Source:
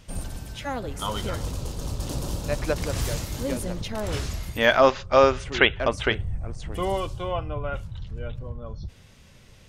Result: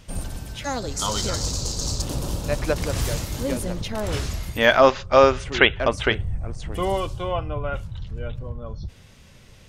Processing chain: 0.64–2.02 band shelf 5600 Hz +13.5 dB 1.2 oct; gain +2.5 dB

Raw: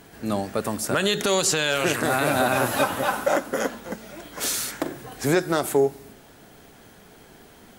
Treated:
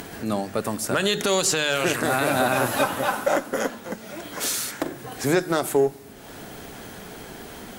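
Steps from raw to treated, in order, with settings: upward compressor, threshold -28 dBFS; added harmonics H 8 -35 dB, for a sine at -9 dBFS; notches 50/100/150 Hz

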